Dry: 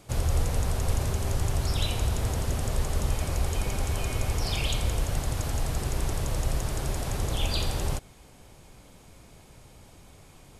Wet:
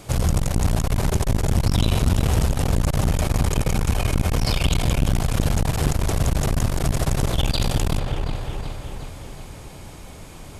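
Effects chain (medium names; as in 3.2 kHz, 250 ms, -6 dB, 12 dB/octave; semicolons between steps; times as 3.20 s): in parallel at -2 dB: peak limiter -21 dBFS, peak gain reduction 8 dB; on the sum: feedback echo behind a low-pass 367 ms, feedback 54%, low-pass 2.8 kHz, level -5.5 dB; transformer saturation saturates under 210 Hz; trim +5.5 dB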